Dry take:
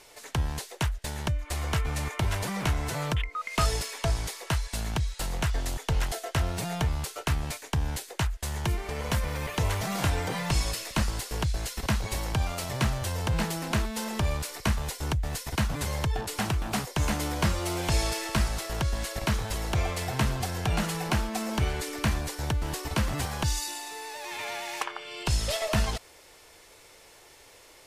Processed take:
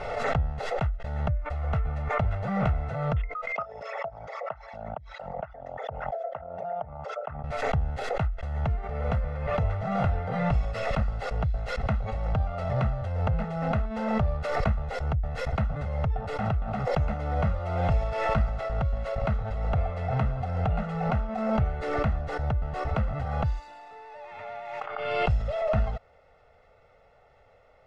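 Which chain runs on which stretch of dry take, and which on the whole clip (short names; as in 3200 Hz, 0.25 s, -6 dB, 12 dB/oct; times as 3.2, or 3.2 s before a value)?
3.52–7.44 formant sharpening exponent 2 + speaker cabinet 480–6200 Hz, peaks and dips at 580 Hz +7 dB, 1000 Hz +4 dB, 2800 Hz -3 dB, 4200 Hz -10 dB
whole clip: LPF 1300 Hz 12 dB/oct; comb 1.5 ms, depth 87%; backwards sustainer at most 35 dB/s; gain -4 dB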